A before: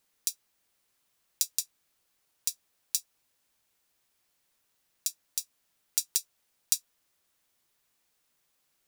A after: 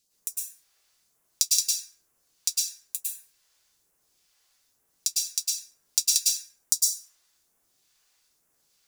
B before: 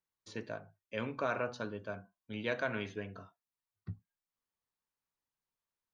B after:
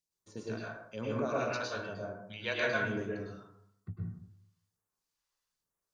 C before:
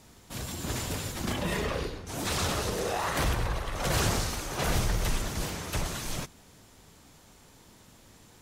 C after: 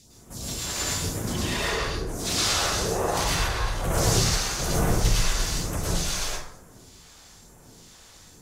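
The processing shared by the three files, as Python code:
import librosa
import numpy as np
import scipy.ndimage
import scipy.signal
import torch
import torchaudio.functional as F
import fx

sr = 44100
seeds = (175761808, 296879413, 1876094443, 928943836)

y = fx.peak_eq(x, sr, hz=5500.0, db=7.5, octaves=1.4)
y = fx.phaser_stages(y, sr, stages=2, low_hz=140.0, high_hz=4800.0, hz=1.1, feedback_pct=25)
y = fx.rev_plate(y, sr, seeds[0], rt60_s=0.76, hf_ratio=0.45, predelay_ms=95, drr_db=-5.5)
y = y * 10.0 ** (-1.5 / 20.0)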